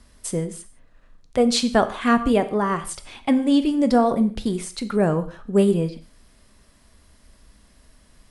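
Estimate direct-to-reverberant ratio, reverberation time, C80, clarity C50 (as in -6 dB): 10.0 dB, not exponential, 17.0 dB, 14.0 dB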